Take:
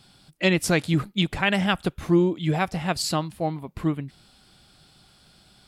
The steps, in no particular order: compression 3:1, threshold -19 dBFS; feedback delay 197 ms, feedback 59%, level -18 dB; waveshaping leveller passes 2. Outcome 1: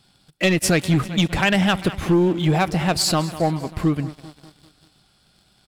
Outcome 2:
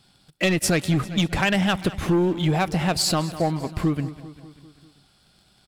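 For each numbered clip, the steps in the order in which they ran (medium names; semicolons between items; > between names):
feedback delay > compression > waveshaping leveller; waveshaping leveller > feedback delay > compression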